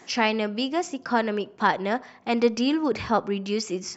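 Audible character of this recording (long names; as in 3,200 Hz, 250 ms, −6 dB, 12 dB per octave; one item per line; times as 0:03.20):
background noise floor −51 dBFS
spectral slope −4.0 dB per octave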